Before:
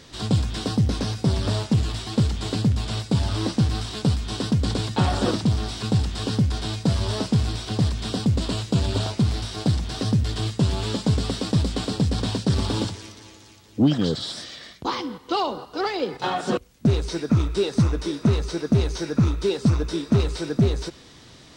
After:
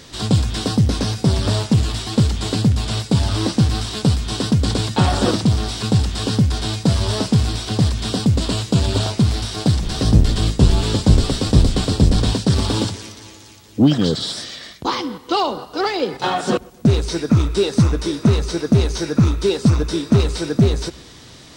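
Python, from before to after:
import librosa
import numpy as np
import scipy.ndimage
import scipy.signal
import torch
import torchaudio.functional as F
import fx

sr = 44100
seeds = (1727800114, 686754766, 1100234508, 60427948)

y = fx.octave_divider(x, sr, octaves=1, level_db=2.0, at=(9.82, 12.33))
y = fx.high_shelf(y, sr, hz=7100.0, db=5.5)
y = fx.echo_filtered(y, sr, ms=124, feedback_pct=50, hz=2000.0, wet_db=-24)
y = y * librosa.db_to_amplitude(5.0)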